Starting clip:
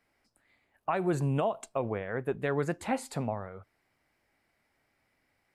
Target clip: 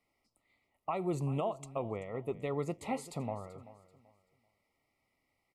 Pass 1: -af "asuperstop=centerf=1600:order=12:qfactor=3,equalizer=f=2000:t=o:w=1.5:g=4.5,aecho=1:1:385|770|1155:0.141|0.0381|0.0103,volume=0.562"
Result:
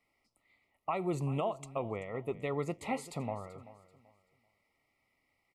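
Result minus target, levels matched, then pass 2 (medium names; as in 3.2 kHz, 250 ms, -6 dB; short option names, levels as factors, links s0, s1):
2 kHz band +3.5 dB
-af "asuperstop=centerf=1600:order=12:qfactor=3,aecho=1:1:385|770|1155:0.141|0.0381|0.0103,volume=0.562"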